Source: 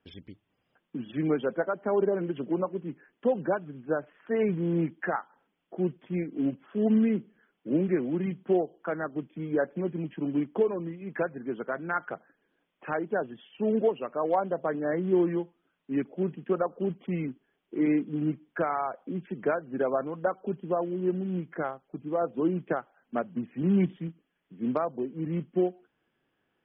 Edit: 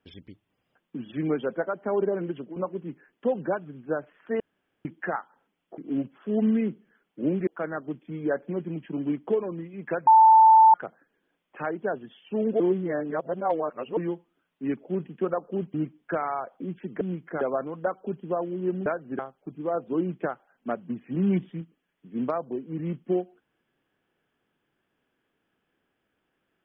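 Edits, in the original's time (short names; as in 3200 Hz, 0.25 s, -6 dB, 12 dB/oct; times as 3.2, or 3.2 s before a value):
2.31–2.56 fade out, to -15.5 dB
4.4–4.85 room tone
5.78–6.26 cut
7.95–8.75 cut
11.35–12.02 bleep 886 Hz -11 dBFS
13.88–15.25 reverse
17.02–18.21 cut
19.48–19.81 swap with 21.26–21.66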